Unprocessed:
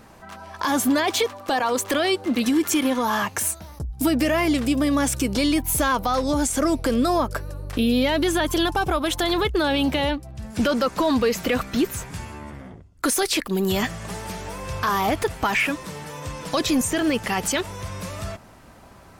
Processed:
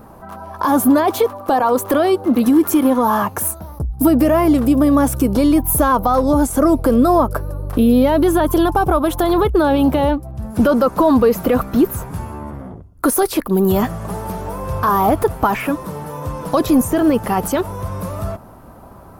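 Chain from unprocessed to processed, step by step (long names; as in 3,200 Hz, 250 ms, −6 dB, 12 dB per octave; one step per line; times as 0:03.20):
flat-topped bell 3,800 Hz −14 dB 2.6 octaves
level +8 dB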